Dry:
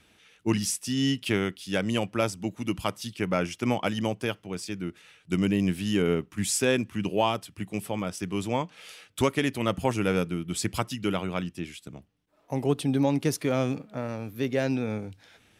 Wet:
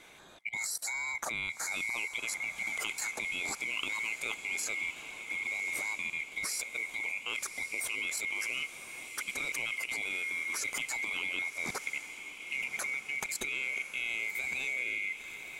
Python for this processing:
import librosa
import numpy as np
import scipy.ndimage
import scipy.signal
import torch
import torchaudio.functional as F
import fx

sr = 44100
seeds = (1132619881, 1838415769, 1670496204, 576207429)

p1 = fx.band_swap(x, sr, width_hz=2000)
p2 = fx.dynamic_eq(p1, sr, hz=7600.0, q=1.7, threshold_db=-48.0, ratio=4.0, max_db=5)
p3 = fx.over_compress(p2, sr, threshold_db=-30.0, ratio=-0.5)
p4 = fx.peak_eq(p3, sr, hz=100.0, db=-6.5, octaves=0.5)
p5 = fx.level_steps(p4, sr, step_db=20)
p6 = p5 + fx.echo_diffused(p5, sr, ms=1140, feedback_pct=57, wet_db=-10.5, dry=0)
y = F.gain(torch.from_numpy(p6), 4.5).numpy()